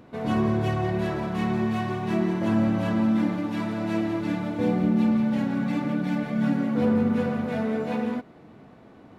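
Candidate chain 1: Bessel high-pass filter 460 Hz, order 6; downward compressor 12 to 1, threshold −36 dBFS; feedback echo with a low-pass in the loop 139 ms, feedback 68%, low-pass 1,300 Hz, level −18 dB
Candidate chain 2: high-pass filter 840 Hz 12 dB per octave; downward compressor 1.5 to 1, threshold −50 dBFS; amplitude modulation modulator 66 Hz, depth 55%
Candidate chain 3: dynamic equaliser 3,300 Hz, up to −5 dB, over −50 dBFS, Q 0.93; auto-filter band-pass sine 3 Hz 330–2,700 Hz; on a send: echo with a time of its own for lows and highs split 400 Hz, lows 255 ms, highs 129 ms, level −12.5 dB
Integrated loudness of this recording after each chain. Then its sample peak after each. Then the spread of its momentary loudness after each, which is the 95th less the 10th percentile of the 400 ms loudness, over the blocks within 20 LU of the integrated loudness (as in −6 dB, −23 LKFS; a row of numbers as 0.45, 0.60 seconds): −40.0, −46.0, −35.5 LKFS; −27.5, −29.5, −18.0 dBFS; 1, 3, 6 LU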